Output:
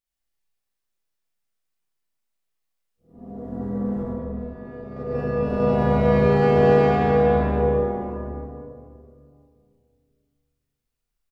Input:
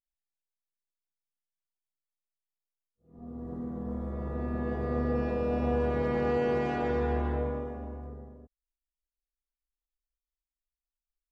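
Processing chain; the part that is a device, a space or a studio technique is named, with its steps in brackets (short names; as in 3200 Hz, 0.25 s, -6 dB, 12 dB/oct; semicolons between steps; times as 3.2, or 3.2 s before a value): bell 1000 Hz -2.5 dB 0.28 oct; doubler 35 ms -5 dB; 4.03–5.6 gate -27 dBFS, range -15 dB; stairwell (reverb RT60 2.3 s, pre-delay 61 ms, DRR -5 dB); gain +4 dB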